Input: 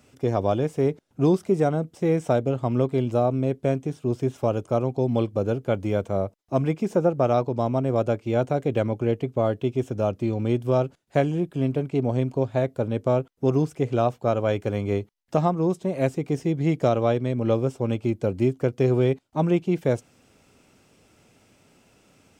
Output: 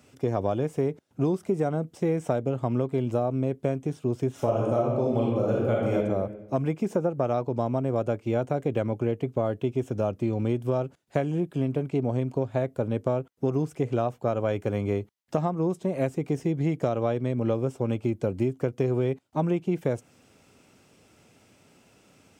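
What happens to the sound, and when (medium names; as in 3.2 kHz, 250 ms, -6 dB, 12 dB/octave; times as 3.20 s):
4.32–5.96 s: reverb throw, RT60 0.97 s, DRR -4.5 dB
whole clip: high-pass 62 Hz; dynamic bell 4.3 kHz, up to -5 dB, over -50 dBFS, Q 1.2; compression, threshold -21 dBFS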